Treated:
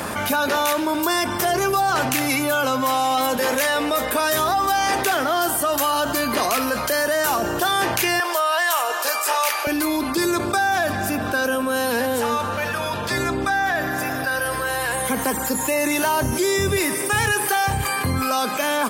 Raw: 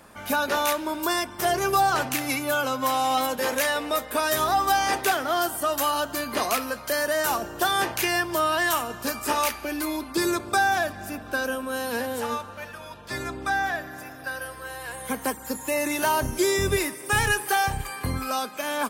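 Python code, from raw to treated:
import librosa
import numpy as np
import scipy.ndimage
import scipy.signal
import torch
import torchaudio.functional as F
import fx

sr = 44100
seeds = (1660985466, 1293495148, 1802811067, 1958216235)

y = fx.highpass(x, sr, hz=fx.steps((0.0, 62.0), (8.2, 510.0), (9.67, 68.0)), slope=24)
y = fx.env_flatten(y, sr, amount_pct=70)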